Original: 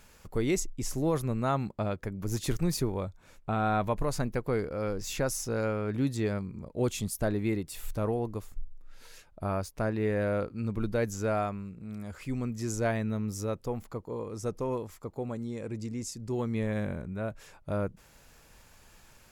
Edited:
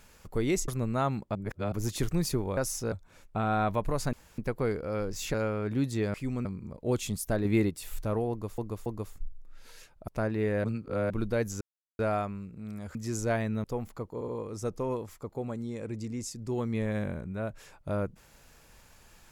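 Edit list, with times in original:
0.68–1.16 s: delete
1.83–2.20 s: reverse
4.26 s: insert room tone 0.25 s
5.22–5.57 s: move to 3.05 s
7.37–7.62 s: gain +4.5 dB
8.22–8.50 s: loop, 3 plays
9.44–9.70 s: delete
10.26–10.72 s: reverse
11.23 s: insert silence 0.38 s
12.19–12.50 s: move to 6.37 s
13.19–13.59 s: delete
14.09 s: stutter 0.07 s, 3 plays

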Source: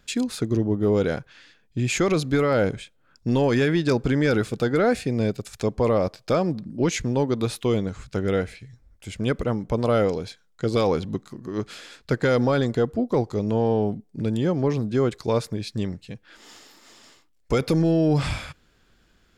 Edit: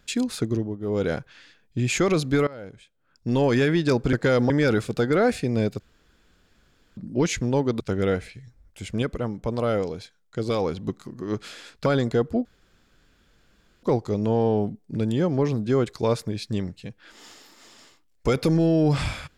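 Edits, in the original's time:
0.44–1.13 s: dip -12 dB, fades 0.34 s
2.47–3.42 s: fade in quadratic, from -19.5 dB
5.43–6.60 s: room tone
7.43–8.06 s: delete
9.28–11.13 s: gain -3.5 dB
12.12–12.49 s: move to 4.13 s
13.08 s: insert room tone 1.38 s

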